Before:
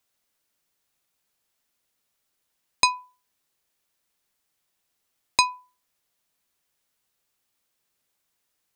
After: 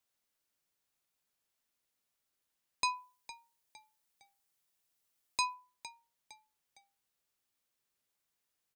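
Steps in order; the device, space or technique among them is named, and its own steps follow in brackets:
0:02.89–0:05.54: high-shelf EQ 5,700 Hz +5.5 dB
echo with shifted repeats 459 ms, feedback 39%, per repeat −67 Hz, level −22 dB
soft clipper into limiter (soft clipping −2 dBFS, distortion −23 dB; brickwall limiter −11.5 dBFS, peak gain reduction 7.5 dB)
level −8 dB

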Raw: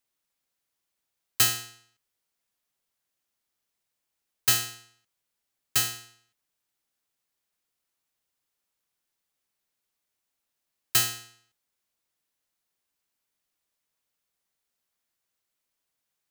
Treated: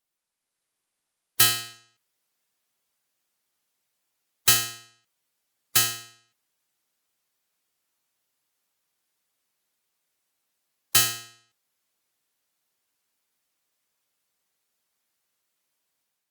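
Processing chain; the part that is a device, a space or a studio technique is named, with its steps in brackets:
noise-suppressed video call (high-pass filter 110 Hz 6 dB per octave; gate on every frequency bin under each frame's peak −20 dB strong; automatic gain control gain up to 6 dB; level −1 dB; Opus 32 kbit/s 48,000 Hz)

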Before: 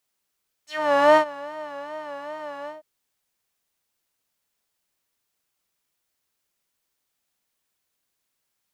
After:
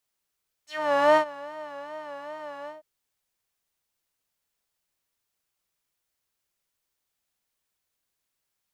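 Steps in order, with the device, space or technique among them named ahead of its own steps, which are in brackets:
low shelf boost with a cut just above (low-shelf EQ 94 Hz +5 dB; parametric band 240 Hz −2.5 dB 0.77 octaves)
level −3.5 dB

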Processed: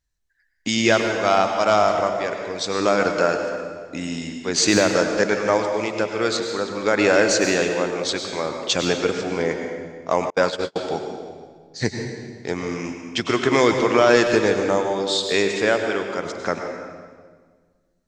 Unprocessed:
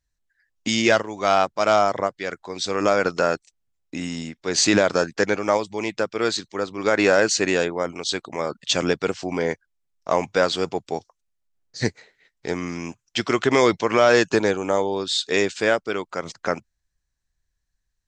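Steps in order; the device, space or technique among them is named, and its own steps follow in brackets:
saturated reverb return (on a send at −3.5 dB: convolution reverb RT60 1.6 s, pre-delay 91 ms + soft clipping −11.5 dBFS, distortion −19 dB)
0:10.30–0:10.76: on the sum: noise gate −19 dBFS, range −39 dB

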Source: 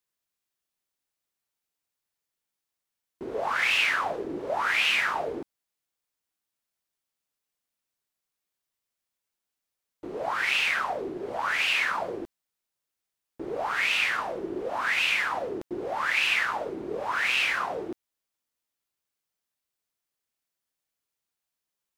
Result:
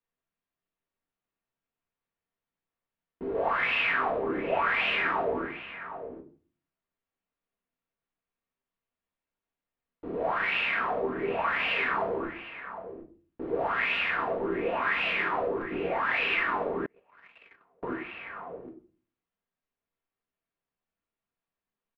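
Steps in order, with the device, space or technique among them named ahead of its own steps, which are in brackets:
shout across a valley (high-frequency loss of the air 470 metres; slap from a distant wall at 130 metres, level −10 dB)
rectangular room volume 220 cubic metres, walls furnished, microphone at 1.7 metres
0:16.86–0:17.83: noise gate −23 dBFS, range −38 dB

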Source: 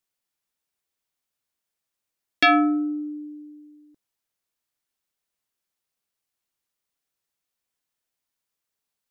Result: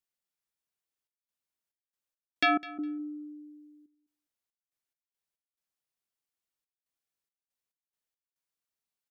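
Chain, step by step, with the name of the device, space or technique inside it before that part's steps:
trance gate with a delay (gate pattern "xxxxx.xx.x.x." 70 BPM −24 dB; repeating echo 205 ms, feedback 16%, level −19 dB)
level −8 dB

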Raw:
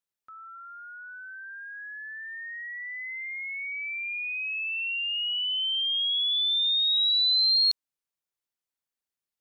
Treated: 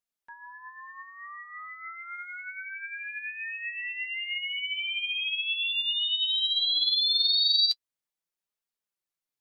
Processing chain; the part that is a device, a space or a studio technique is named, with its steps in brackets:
alien voice (ring modulation 360 Hz; flanger 0.46 Hz, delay 4.1 ms, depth 4.5 ms, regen +33%)
level +5.5 dB

